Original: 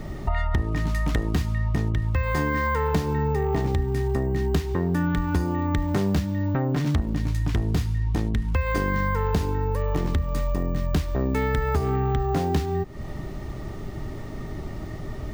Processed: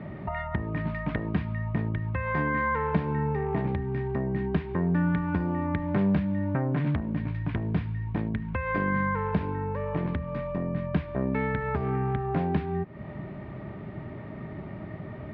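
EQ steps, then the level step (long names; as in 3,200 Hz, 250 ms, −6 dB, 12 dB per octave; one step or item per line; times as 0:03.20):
high-frequency loss of the air 130 metres
loudspeaker in its box 100–3,500 Hz, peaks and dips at 190 Hz +5 dB, 610 Hz +7 dB, 1,000 Hz +6 dB, 1,600 Hz +7 dB, 2,300 Hz +7 dB
parametric band 140 Hz +5 dB 2.3 octaves
−7.0 dB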